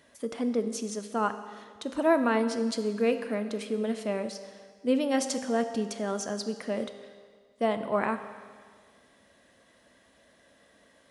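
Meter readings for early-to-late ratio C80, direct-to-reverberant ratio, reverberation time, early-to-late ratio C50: 11.5 dB, 8.5 dB, 1.8 s, 10.5 dB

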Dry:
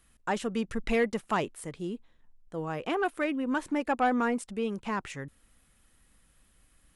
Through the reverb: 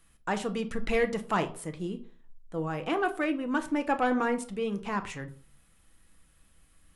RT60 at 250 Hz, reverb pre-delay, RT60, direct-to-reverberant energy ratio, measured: 0.45 s, 6 ms, 0.45 s, 6.5 dB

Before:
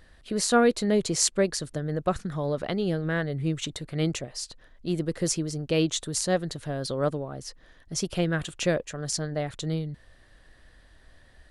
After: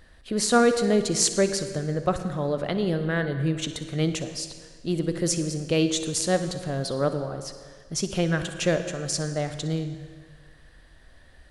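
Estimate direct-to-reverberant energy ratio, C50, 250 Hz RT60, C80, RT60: 8.5 dB, 8.5 dB, 1.7 s, 10.5 dB, 1.7 s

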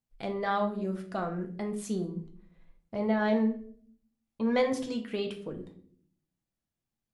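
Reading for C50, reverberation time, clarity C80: 11.0 dB, 0.55 s, 15.0 dB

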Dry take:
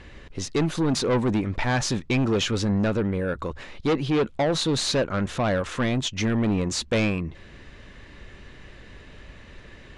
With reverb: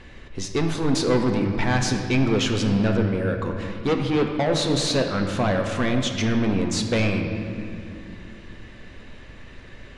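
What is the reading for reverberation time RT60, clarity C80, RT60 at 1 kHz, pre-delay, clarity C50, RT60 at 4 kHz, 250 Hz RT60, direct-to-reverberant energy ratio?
2.6 s, 6.0 dB, 2.4 s, 3 ms, 5.0 dB, 1.6 s, 3.9 s, 3.0 dB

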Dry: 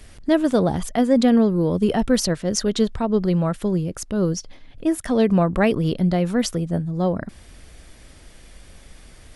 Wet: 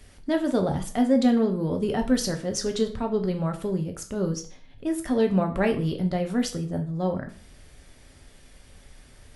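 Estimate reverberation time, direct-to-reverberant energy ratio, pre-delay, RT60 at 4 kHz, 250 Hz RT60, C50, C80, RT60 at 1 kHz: 0.40 s, 4.0 dB, 5 ms, 0.35 s, 0.40 s, 12.0 dB, 16.5 dB, 0.40 s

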